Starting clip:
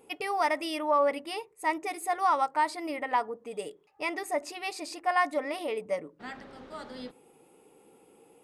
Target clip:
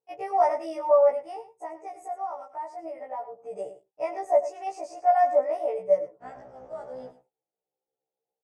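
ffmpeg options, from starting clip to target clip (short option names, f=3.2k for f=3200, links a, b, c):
-filter_complex "[0:a]agate=range=-34dB:threshold=-48dB:ratio=16:detection=peak,firequalizer=gain_entry='entry(100,0);entry(150,6);entry(220,-10);entry(620,13);entry(1100,-3);entry(4100,-22);entry(5800,-1);entry(12000,-19)':delay=0.05:min_phase=1,asettb=1/sr,asplit=3[a][b][c];[a]atrim=end=1.144[d];[b]atrim=start=1.14:end=3.42,asetpts=PTS-STARTPTS,afade=t=in:d=0.004:c=qsin,afade=t=out:st=2.276:d=0.004:c=qsin,acompressor=threshold=-34dB:ratio=3[e];[c]atrim=start=3.416[f];[d][e]acrossfade=d=0.004:c1=hsin:c2=qsin[g];[g][f]acrossfade=d=0.004:c1=qsin:c2=hsin,aecho=1:1:101:0.211,afftfilt=real='re*1.73*eq(mod(b,3),0)':imag='im*1.73*eq(mod(b,3),0)':win_size=2048:overlap=0.75"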